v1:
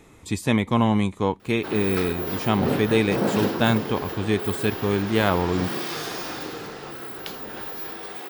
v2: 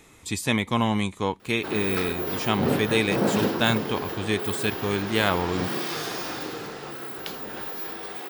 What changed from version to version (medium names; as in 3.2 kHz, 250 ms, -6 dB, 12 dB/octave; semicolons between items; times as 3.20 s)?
speech: add tilt shelf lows -4.5 dB, about 1.4 kHz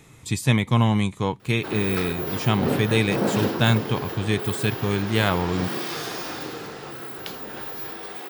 speech: add peaking EQ 130 Hz +14 dB 0.67 oct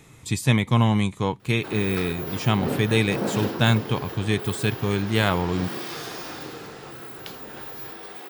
background -3.5 dB